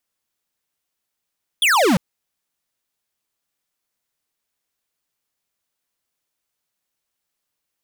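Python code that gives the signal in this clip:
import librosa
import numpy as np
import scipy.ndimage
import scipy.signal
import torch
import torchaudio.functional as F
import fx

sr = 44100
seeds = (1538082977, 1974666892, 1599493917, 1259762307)

y = fx.laser_zap(sr, level_db=-15.0, start_hz=3600.0, end_hz=160.0, length_s=0.35, wave='square')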